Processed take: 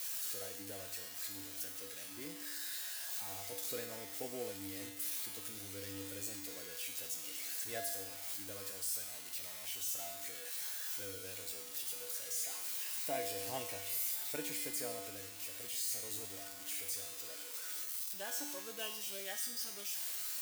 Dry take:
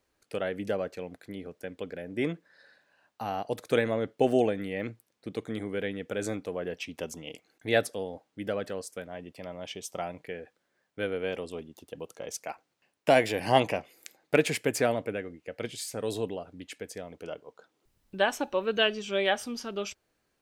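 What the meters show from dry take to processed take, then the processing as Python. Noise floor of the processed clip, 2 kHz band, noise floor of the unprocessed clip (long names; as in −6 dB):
−48 dBFS, −14.0 dB, −77 dBFS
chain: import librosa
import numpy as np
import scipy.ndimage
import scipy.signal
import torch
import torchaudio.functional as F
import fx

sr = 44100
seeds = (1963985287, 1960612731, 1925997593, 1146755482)

y = x + 0.5 * 10.0 ** (-13.5 / 20.0) * np.diff(np.sign(x), prepend=np.sign(x[:1]))
y = fx.comb_fb(y, sr, f0_hz=98.0, decay_s=1.0, harmonics='odd', damping=0.0, mix_pct=90)
y = y * librosa.db_to_amplitude(-3.5)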